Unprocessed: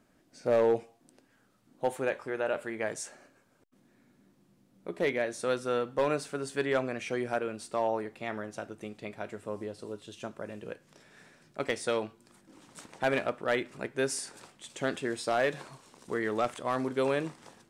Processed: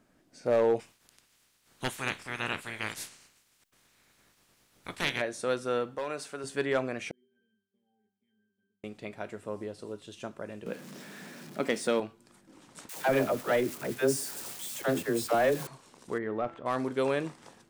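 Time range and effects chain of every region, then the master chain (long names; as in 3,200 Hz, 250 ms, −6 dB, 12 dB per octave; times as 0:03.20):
0:00.79–0:05.20: ceiling on every frequency bin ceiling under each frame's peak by 26 dB + parametric band 700 Hz −6 dB 1.9 octaves
0:05.95–0:06.44: low-shelf EQ 330 Hz −10 dB + downward compressor 2 to 1, threshold −33 dBFS
0:07.11–0:08.84: formant filter i + low-shelf EQ 150 Hz −5 dB + resonances in every octave G, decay 0.61 s
0:10.66–0:12.00: converter with a step at zero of −45 dBFS + high-pass with resonance 200 Hz, resonance Q 2.5
0:12.89–0:15.67: spike at every zero crossing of −29 dBFS + tilt shelving filter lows +4.5 dB, about 1,400 Hz + all-pass dispersion lows, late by 76 ms, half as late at 500 Hz
0:16.18–0:16.66: head-to-tape spacing loss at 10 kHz 38 dB + hum removal 167.7 Hz, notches 34
whole clip: no processing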